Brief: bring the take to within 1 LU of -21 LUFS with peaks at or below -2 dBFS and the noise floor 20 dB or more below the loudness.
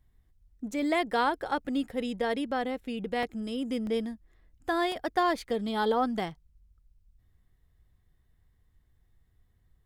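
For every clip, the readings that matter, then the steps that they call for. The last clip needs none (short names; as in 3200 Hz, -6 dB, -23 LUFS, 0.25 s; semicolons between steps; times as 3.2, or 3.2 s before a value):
dropouts 3; longest dropout 1.2 ms; loudness -30.5 LUFS; peak -14.5 dBFS; loudness target -21.0 LUFS
-> interpolate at 3.23/3.87/4.92, 1.2 ms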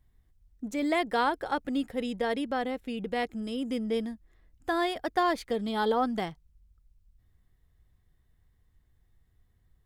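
dropouts 0; loudness -30.5 LUFS; peak -14.5 dBFS; loudness target -21.0 LUFS
-> gain +9.5 dB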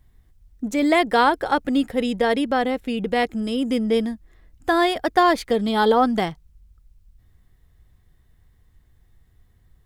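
loudness -21.0 LUFS; peak -5.0 dBFS; noise floor -59 dBFS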